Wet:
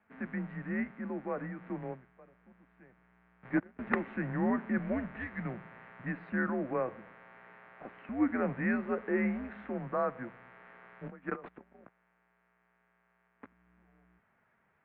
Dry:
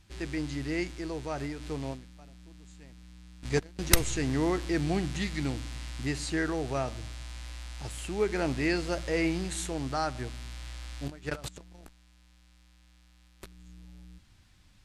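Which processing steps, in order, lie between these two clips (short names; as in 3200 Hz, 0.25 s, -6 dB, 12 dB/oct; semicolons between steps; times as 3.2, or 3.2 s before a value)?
mistuned SSB -120 Hz 310–2100 Hz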